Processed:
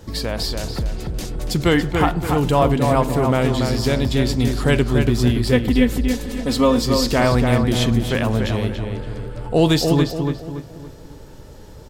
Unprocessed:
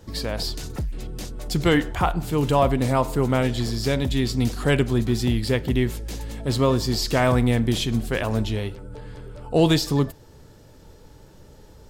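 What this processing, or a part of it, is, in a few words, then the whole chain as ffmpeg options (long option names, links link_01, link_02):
parallel compression: -filter_complex "[0:a]asettb=1/sr,asplit=3[link_01][link_02][link_03];[link_01]atrim=end=5.524[link_04];[link_02]atrim=start=5.52:end=6.85,asetpts=PTS-STARTPTS,afade=type=in:duration=0.004:curve=qsin,afade=type=out:start_time=1.326:duration=0.004:curve=qsin,aecho=1:1:4:0.77,atrim=end_sample=58653[link_05];[link_03]atrim=start=6.846[link_06];[link_04][link_05]acrossfade=duration=0.004:curve1=hsin:curve2=qsin[link_07];[link_07][link_06]acrossfade=duration=0.004:curve1=qsin:curve2=hsin,asplit=2[link_08][link_09];[link_09]acompressor=threshold=-33dB:ratio=6,volume=-3.5dB[link_10];[link_08][link_10]amix=inputs=2:normalize=0,asplit=2[link_11][link_12];[link_12]adelay=284,lowpass=frequency=2800:poles=1,volume=-4.5dB,asplit=2[link_13][link_14];[link_14]adelay=284,lowpass=frequency=2800:poles=1,volume=0.4,asplit=2[link_15][link_16];[link_16]adelay=284,lowpass=frequency=2800:poles=1,volume=0.4,asplit=2[link_17][link_18];[link_18]adelay=284,lowpass=frequency=2800:poles=1,volume=0.4,asplit=2[link_19][link_20];[link_20]adelay=284,lowpass=frequency=2800:poles=1,volume=0.4[link_21];[link_11][link_13][link_15][link_17][link_19][link_21]amix=inputs=6:normalize=0,volume=1.5dB"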